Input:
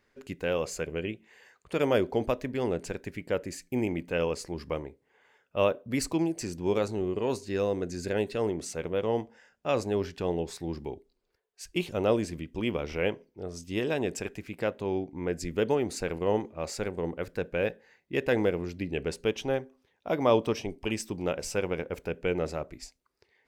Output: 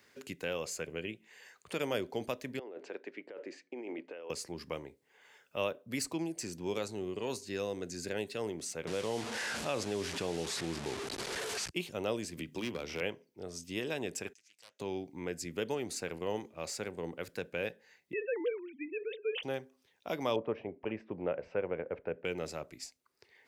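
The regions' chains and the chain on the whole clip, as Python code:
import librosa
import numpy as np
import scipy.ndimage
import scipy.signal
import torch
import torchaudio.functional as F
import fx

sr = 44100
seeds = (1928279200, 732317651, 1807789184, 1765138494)

y = fx.chain(x, sr, fx.highpass(hz=330.0, slope=24),
    fx.spacing_loss(db_at_10k=43),
    fx.over_compress(threshold_db=-38.0, ratio=-1.0), at=(2.59, 4.3))
y = fx.chain(y, sr, fx.delta_mod(bps=64000, step_db=-35.5),
    fx.air_absorb(metres=55.0),
    fx.env_flatten(amount_pct=50), at=(8.87, 11.7))
y = fx.chain(y, sr, fx.hum_notches(base_hz=50, count=4),
    fx.overload_stage(gain_db=25.0),
    fx.band_squash(depth_pct=70), at=(12.37, 13.01))
y = fx.chain(y, sr, fx.bandpass_q(hz=6200.0, q=3.9),
    fx.doppler_dist(depth_ms=0.41), at=(14.33, 14.8))
y = fx.chain(y, sr, fx.sine_speech(),
    fx.sustainer(db_per_s=140.0), at=(18.13, 19.43))
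y = fx.chain(y, sr, fx.lowpass(hz=1900.0, slope=24),
    fx.peak_eq(hz=550.0, db=7.5, octaves=0.94), at=(20.36, 22.25))
y = scipy.signal.sosfilt(scipy.signal.butter(2, 93.0, 'highpass', fs=sr, output='sos'), y)
y = fx.high_shelf(y, sr, hz=2400.0, db=10.0)
y = fx.band_squash(y, sr, depth_pct=40)
y = y * 10.0 ** (-9.0 / 20.0)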